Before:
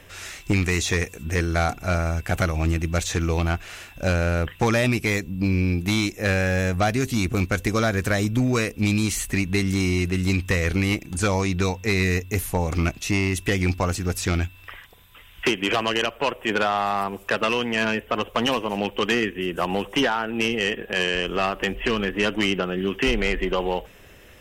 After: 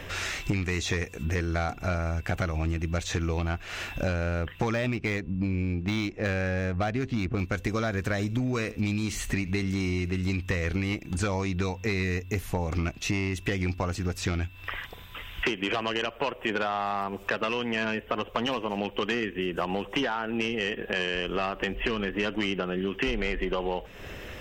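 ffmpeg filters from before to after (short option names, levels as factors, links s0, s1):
-filter_complex "[0:a]asettb=1/sr,asplit=3[s0][s1][s2];[s0]atrim=end=4.734[s3];[s1]atrim=start=4.73:end=7.39,asetpts=PTS-STARTPTS,afade=t=in:d=0.004:c=qsin,afade=t=out:st=2.656:d=0.004:c=qsin,adynamicsmooth=sensitivity=2.5:basefreq=2300[s4];[s2]atrim=start=7.386[s5];[s3][s4]acrossfade=d=0.004:c1=hsin:c2=qsin[s6];[s6][s5]acrossfade=d=0.004:c1=qsin:c2=hsin,asettb=1/sr,asplit=3[s7][s8][s9];[s7]atrim=end=8.124[s10];[s8]atrim=start=8.12:end=10.27,asetpts=PTS-STARTPTS,afade=t=in:d=0.004:c=qsin,afade=t=out:st=2.146:d=0.004:c=qsin,aecho=1:1:78:0.0891,atrim=end_sample=94815[s11];[s9]atrim=start=10.266[s12];[s10][s11]acrossfade=d=0.004:c1=hsin:c2=qsin[s13];[s13][s12]acrossfade=d=0.004:c1=qsin:c2=hsin,equalizer=f=11000:t=o:w=1:g=-13.5,acompressor=threshold=0.0141:ratio=4,volume=2.66"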